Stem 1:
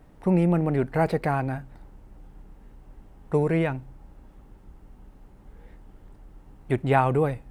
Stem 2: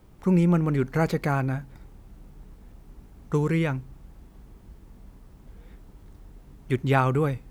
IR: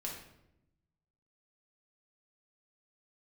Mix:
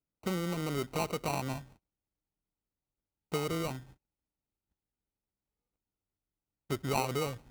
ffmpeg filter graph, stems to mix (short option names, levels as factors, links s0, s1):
-filter_complex "[0:a]highpass=68,agate=range=0.02:threshold=0.00501:ratio=16:detection=peak,acompressor=threshold=0.0562:ratio=6,volume=0.562,asplit=2[s0][s1];[1:a]volume=-1,volume=0.168[s2];[s1]apad=whole_len=330877[s3];[s2][s3]sidechaingate=range=0.0224:threshold=0.00355:ratio=16:detection=peak[s4];[s0][s4]amix=inputs=2:normalize=0,acrusher=samples=26:mix=1:aa=0.000001"